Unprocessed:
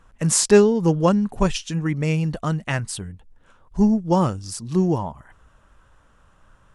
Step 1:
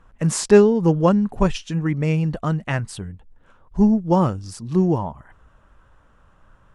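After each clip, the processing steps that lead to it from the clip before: high shelf 3600 Hz -10 dB; gain +1.5 dB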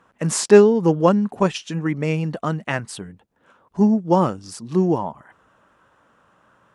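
HPF 200 Hz 12 dB/oct; gain +2 dB

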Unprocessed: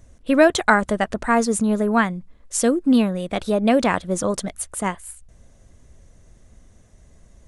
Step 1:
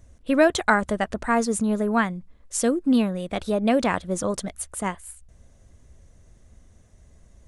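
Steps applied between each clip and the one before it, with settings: bell 74 Hz +4 dB; gain -3.5 dB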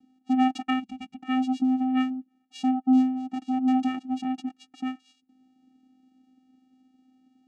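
vocoder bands 4, square 258 Hz; spectral gain 0.79–1.19, 230–2000 Hz -11 dB; small resonant body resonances 540/2800 Hz, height 10 dB, ringing for 45 ms; gain -2 dB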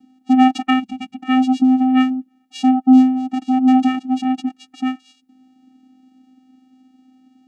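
harmonic-percussive split harmonic +8 dB; gain +2 dB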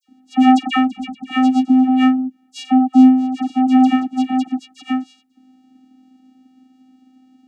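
dispersion lows, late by 82 ms, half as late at 1800 Hz; gain +1 dB

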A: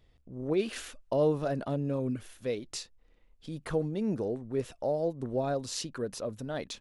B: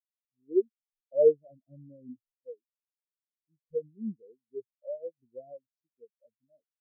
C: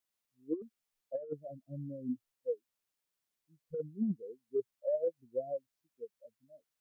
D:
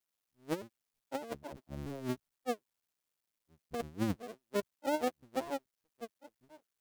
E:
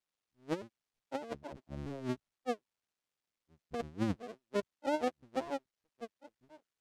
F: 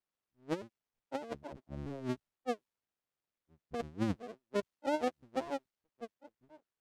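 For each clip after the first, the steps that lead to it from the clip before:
spectral expander 4:1; gain +5.5 dB
negative-ratio compressor -36 dBFS, ratio -1; gain +1 dB
cycle switcher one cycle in 2, muted; gain +2.5 dB
air absorption 60 m
mismatched tape noise reduction decoder only

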